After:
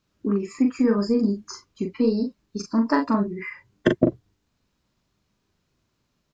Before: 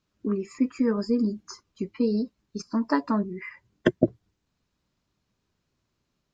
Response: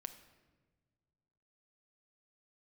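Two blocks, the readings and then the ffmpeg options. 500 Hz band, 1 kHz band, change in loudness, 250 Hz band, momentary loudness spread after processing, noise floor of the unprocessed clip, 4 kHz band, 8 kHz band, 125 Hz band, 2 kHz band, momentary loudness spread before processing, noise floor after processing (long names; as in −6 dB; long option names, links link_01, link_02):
+3.5 dB, +4.0 dB, +3.5 dB, +3.5 dB, 12 LU, −78 dBFS, +4.0 dB, can't be measured, +3.5 dB, +3.5 dB, 14 LU, −74 dBFS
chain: -filter_complex "[0:a]asplit=2[link_01][link_02];[link_02]asoftclip=type=tanh:threshold=-17dB,volume=-7dB[link_03];[link_01][link_03]amix=inputs=2:normalize=0,asplit=2[link_04][link_05];[link_05]adelay=40,volume=-5dB[link_06];[link_04][link_06]amix=inputs=2:normalize=0"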